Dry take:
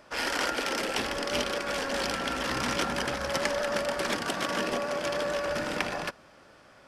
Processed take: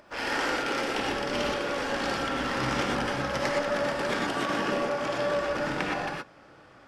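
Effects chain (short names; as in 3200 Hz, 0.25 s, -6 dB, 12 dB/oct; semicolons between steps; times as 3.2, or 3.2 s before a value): LPF 3200 Hz 6 dB/oct; upward compressor, threshold -53 dBFS; non-linear reverb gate 0.14 s rising, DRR -1.5 dB; gain -1.5 dB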